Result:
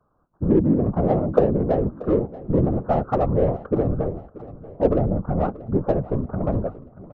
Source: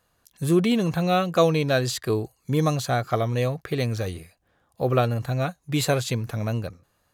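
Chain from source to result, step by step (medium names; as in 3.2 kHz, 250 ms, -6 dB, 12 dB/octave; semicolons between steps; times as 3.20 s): steep low-pass 1.4 kHz 96 dB/octave; low-pass that closes with the level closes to 350 Hz, closed at -17 dBFS; dynamic bell 530 Hz, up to +5 dB, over -37 dBFS, Q 1.3; in parallel at -6 dB: saturation -25.5 dBFS, distortion -8 dB; on the sum: whisper effect; on a send: feedback delay 633 ms, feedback 48%, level -18 dB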